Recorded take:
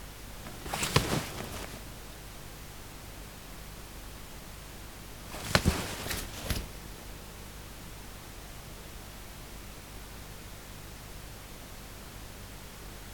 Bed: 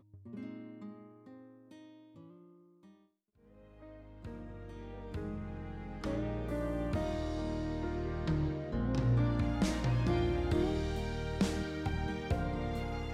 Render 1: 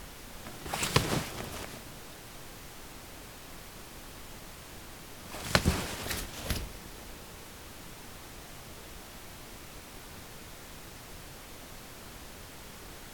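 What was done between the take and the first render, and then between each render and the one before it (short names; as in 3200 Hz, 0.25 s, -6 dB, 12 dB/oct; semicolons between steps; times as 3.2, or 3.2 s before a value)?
de-hum 50 Hz, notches 4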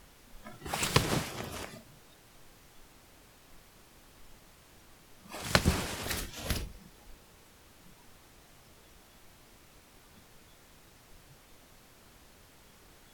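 noise print and reduce 11 dB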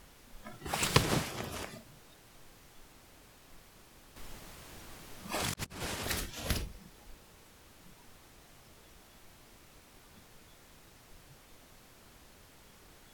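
4.16–5.84 negative-ratio compressor -39 dBFS, ratio -0.5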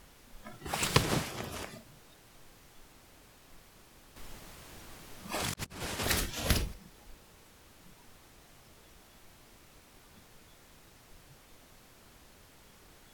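5.99–6.74 gain +5 dB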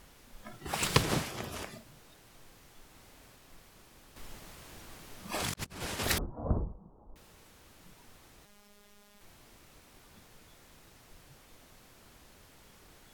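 2.87–3.36 flutter echo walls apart 8.8 m, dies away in 0.48 s; 6.18–7.16 steep low-pass 1100 Hz 48 dB/oct; 8.45–9.21 robotiser 205 Hz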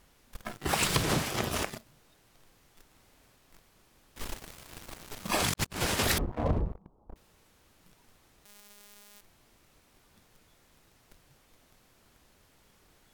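sample leveller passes 3; compressor 5:1, threshold -25 dBFS, peak gain reduction 11 dB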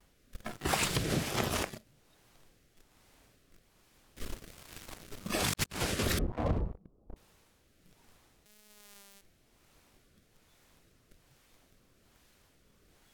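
vibrato 0.96 Hz 48 cents; rotary speaker horn 1.2 Hz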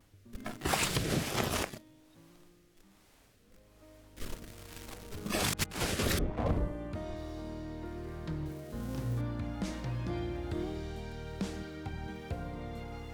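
add bed -5 dB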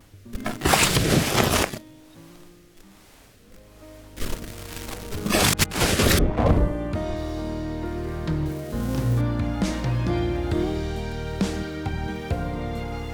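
gain +12 dB; limiter -3 dBFS, peak gain reduction 2 dB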